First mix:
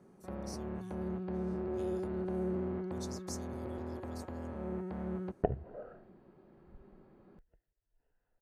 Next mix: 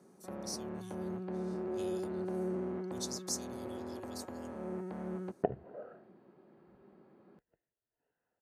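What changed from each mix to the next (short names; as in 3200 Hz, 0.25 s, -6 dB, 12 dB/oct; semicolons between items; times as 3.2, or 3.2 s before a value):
speech +8.5 dB; master: add HPF 170 Hz 12 dB/oct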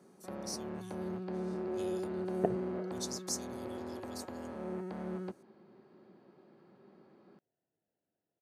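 first sound: remove air absorption 260 m; second sound: entry -3.00 s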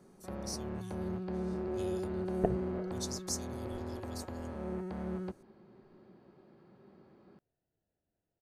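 master: remove HPF 170 Hz 12 dB/oct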